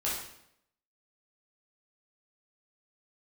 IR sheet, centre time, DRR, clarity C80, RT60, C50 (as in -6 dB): 51 ms, -7.5 dB, 6.0 dB, 0.75 s, 2.0 dB